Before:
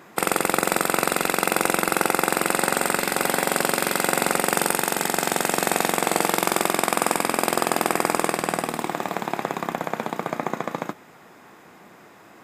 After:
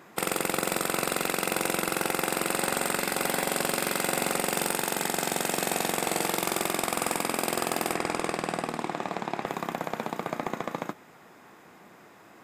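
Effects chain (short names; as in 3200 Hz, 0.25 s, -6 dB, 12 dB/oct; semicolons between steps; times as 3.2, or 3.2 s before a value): hard clip -13.5 dBFS, distortion -10 dB; 7.95–9.46 air absorption 52 m; gain -4 dB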